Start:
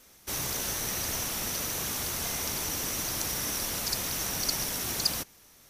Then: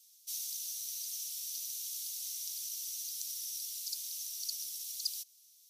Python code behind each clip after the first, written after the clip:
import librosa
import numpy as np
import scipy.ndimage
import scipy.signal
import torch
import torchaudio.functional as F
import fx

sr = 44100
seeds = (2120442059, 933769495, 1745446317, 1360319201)

y = scipy.signal.sosfilt(scipy.signal.cheby2(4, 70, 860.0, 'highpass', fs=sr, output='sos'), x)
y = fx.rider(y, sr, range_db=4, speed_s=0.5)
y = y * librosa.db_to_amplitude(-7.0)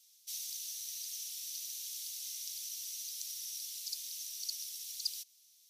y = fx.high_shelf(x, sr, hz=4400.0, db=-9.5)
y = y * librosa.db_to_amplitude(5.0)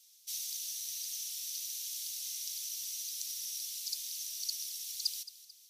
y = fx.echo_feedback(x, sr, ms=220, feedback_pct=45, wet_db=-16)
y = y * librosa.db_to_amplitude(2.5)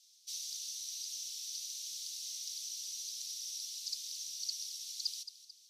y = 10.0 ** (-28.0 / 20.0) * np.tanh(x / 10.0 ** (-28.0 / 20.0))
y = fx.bandpass_q(y, sr, hz=4600.0, q=1.4)
y = y * librosa.db_to_amplitude(1.5)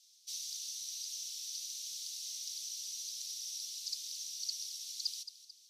y = fx.quant_float(x, sr, bits=6)